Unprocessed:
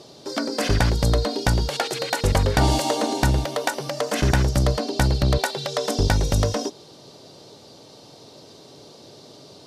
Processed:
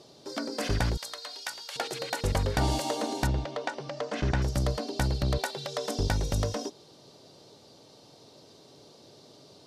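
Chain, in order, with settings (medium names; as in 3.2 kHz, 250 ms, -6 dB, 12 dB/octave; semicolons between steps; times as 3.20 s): 0.97–1.76 s: high-pass 1.3 kHz 12 dB/octave; 3.27–4.42 s: distance through air 120 m; trim -8 dB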